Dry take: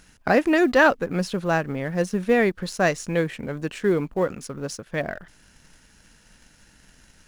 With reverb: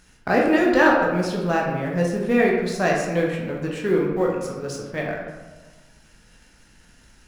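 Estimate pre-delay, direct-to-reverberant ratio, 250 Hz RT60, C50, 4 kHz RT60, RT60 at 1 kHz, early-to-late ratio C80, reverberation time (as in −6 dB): 11 ms, −2.5 dB, 1.5 s, 2.0 dB, 0.70 s, 1.2 s, 4.5 dB, 1.3 s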